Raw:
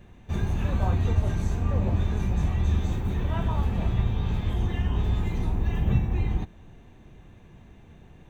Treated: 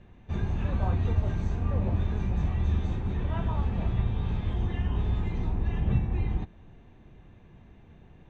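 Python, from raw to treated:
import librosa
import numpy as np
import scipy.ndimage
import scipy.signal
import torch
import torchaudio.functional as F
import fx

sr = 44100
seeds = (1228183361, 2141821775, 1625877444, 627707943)

y = fx.air_absorb(x, sr, metres=130.0)
y = F.gain(torch.from_numpy(y), -2.5).numpy()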